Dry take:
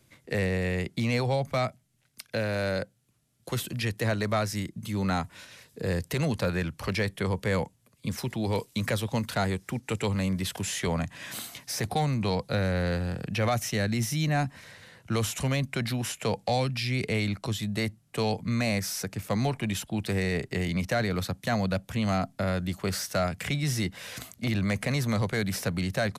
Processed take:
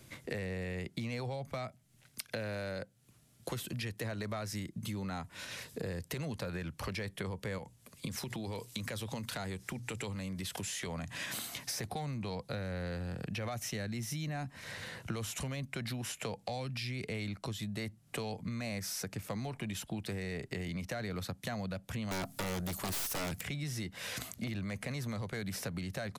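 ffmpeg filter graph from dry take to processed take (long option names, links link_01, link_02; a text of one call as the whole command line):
ffmpeg -i in.wav -filter_complex "[0:a]asettb=1/sr,asplit=3[link_01][link_02][link_03];[link_01]atrim=end=7.584[link_04];[link_02]atrim=start=7.58:end=11.26,asetpts=PTS-STARTPTS,afade=type=in:duration=0.004:curve=qsin,afade=type=out:start_time=3.676:duration=0.004:curve=qsin,equalizer=frequency=7500:width=0.3:gain=3.5,bandreject=frequency=60:width_type=h:width=6,bandreject=frequency=120:width_type=h:width=6,acompressor=threshold=-33dB:ratio=4:attack=3.2:release=140:knee=1:detection=peak[link_05];[link_03]atrim=start=11.256[link_06];[link_04][link_05]acrossfade=duration=0.004:curve1=hsin:curve2=qsin[link_07];[link_07][link_06]acrossfade=duration=0.004:curve1=qsin:curve2=hsin,asettb=1/sr,asplit=3[link_08][link_09][link_10];[link_08]atrim=end=22.114[link_11];[link_09]atrim=start=22.11:end=23.41,asetpts=PTS-STARTPTS,afade=type=in:duration=0.004:curve=qsin,afade=type=out:start_time=1.296:duration=0.004:curve=qsin,aemphasis=mode=production:type=50fm,aeval=exprs='(tanh(15.8*val(0)+0.75)-tanh(0.75))/15.8':channel_layout=same,aeval=exprs='0.112*sin(PI/2*3.98*val(0)/0.112)':channel_layout=same[link_12];[link_10]atrim=start=23.406[link_13];[link_11][link_12]acrossfade=duration=0.004:curve1=hsin:curve2=qsin[link_14];[link_14][link_13]acrossfade=duration=0.004:curve1=qsin:curve2=hsin,alimiter=limit=-21.5dB:level=0:latency=1:release=76,acompressor=threshold=-44dB:ratio=6,volume=6.5dB" out.wav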